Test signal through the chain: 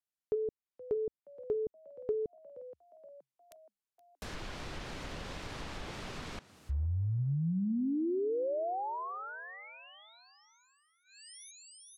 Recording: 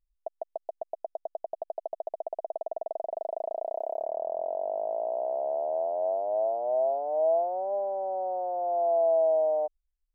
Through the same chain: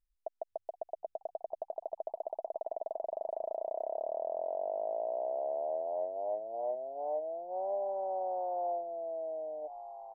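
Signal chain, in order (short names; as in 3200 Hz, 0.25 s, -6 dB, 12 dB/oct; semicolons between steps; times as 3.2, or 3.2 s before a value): frequency-shifting echo 0.473 s, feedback 52%, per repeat +66 Hz, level -19 dB; treble ducked by the level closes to 350 Hz, closed at -23.5 dBFS; gain -4 dB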